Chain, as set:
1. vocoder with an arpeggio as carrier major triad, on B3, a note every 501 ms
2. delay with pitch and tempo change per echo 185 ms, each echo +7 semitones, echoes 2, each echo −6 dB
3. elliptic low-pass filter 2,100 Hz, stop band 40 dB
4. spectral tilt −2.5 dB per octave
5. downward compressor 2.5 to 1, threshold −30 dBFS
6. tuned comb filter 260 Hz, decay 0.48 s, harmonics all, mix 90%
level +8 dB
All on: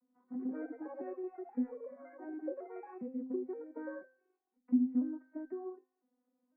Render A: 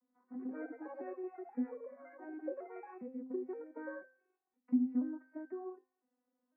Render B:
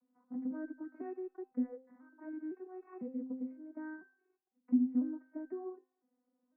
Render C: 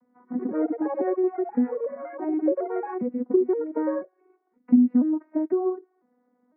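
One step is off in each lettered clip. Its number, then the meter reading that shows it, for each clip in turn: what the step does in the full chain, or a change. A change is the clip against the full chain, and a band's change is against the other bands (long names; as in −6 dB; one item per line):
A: 4, 2 kHz band +4.0 dB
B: 2, 500 Hz band −4.0 dB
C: 6, 2 kHz band −7.5 dB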